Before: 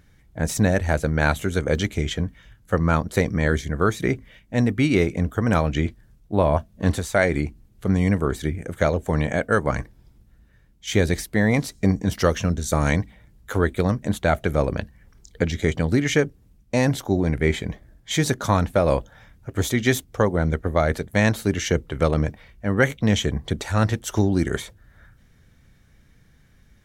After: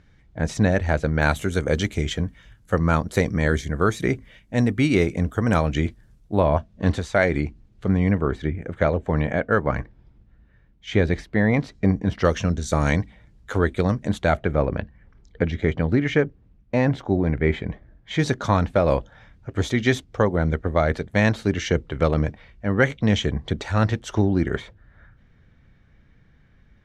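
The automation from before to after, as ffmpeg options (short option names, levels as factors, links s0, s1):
-af "asetnsamples=n=441:p=0,asendcmd='1.22 lowpass f 11000;6.4 lowpass f 4900;7.88 lowpass f 2800;12.25 lowpass f 6400;14.37 lowpass f 2500;18.19 lowpass f 4800;24.15 lowpass f 2900',lowpass=4800"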